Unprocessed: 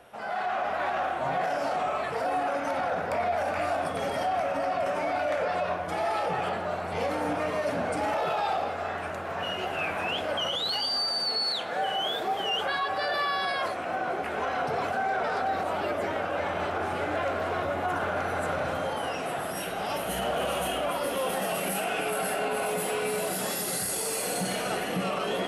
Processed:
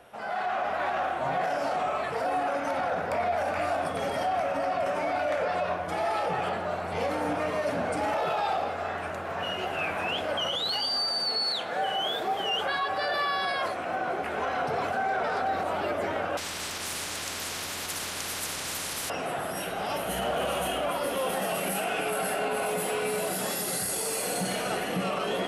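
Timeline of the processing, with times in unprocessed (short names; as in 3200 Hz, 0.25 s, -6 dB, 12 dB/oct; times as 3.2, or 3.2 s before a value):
16.37–19.1 spectral compressor 10:1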